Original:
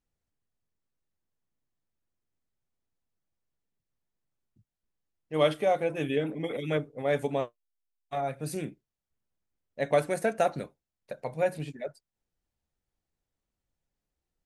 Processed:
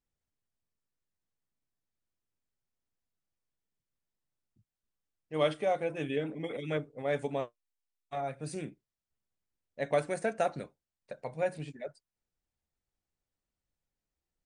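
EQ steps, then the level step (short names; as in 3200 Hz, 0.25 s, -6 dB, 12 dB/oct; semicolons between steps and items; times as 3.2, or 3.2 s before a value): Chebyshev low-pass 9800 Hz, order 10; -3.5 dB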